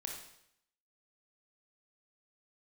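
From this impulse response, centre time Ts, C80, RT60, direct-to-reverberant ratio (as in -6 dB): 37 ms, 6.5 dB, 0.75 s, 0.5 dB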